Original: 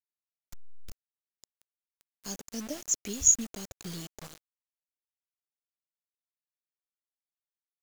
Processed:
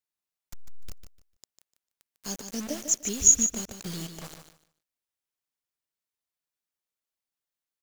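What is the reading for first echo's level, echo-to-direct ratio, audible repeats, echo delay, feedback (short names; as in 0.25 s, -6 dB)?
-8.5 dB, -8.5 dB, 2, 0.149 s, 21%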